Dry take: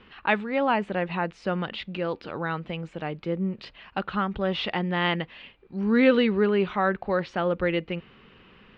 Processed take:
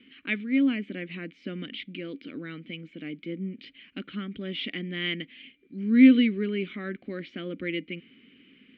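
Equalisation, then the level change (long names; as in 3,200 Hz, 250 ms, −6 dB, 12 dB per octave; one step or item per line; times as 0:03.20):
formant filter i
+9.0 dB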